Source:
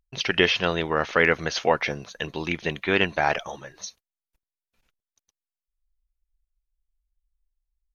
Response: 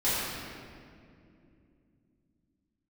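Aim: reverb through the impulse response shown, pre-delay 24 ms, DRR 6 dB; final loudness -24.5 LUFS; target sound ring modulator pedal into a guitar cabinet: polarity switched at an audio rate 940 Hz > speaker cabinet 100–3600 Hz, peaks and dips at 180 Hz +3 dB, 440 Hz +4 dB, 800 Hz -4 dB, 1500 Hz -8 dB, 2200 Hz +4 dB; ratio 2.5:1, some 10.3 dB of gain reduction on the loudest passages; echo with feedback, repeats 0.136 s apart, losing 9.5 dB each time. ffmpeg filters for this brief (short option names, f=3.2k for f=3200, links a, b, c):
-filter_complex "[0:a]acompressor=threshold=-30dB:ratio=2.5,aecho=1:1:136|272|408|544:0.335|0.111|0.0365|0.012,asplit=2[a][b];[1:a]atrim=start_sample=2205,adelay=24[c];[b][c]afir=irnorm=-1:irlink=0,volume=-18dB[d];[a][d]amix=inputs=2:normalize=0,aeval=exprs='val(0)*sgn(sin(2*PI*940*n/s))':c=same,highpass=100,equalizer=f=180:t=q:w=4:g=3,equalizer=f=440:t=q:w=4:g=4,equalizer=f=800:t=q:w=4:g=-4,equalizer=f=1.5k:t=q:w=4:g=-8,equalizer=f=2.2k:t=q:w=4:g=4,lowpass=f=3.6k:w=0.5412,lowpass=f=3.6k:w=1.3066,volume=7dB"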